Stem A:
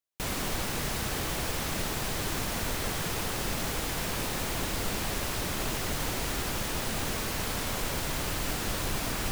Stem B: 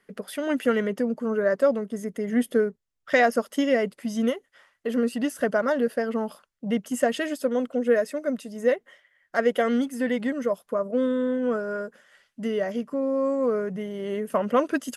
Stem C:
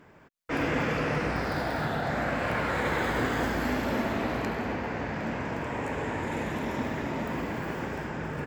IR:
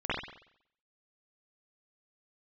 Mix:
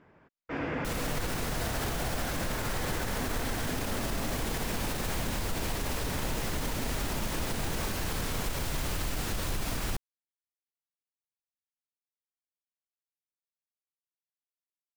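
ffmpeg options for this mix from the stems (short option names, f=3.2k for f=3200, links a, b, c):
-filter_complex "[0:a]lowshelf=f=110:g=7.5,adelay=650,volume=-0.5dB[a];[2:a]lowpass=7.6k,aemphasis=mode=reproduction:type=50fm,volume=-5.5dB[b];[a][b]amix=inputs=2:normalize=0,alimiter=limit=-22.5dB:level=0:latency=1:release=54"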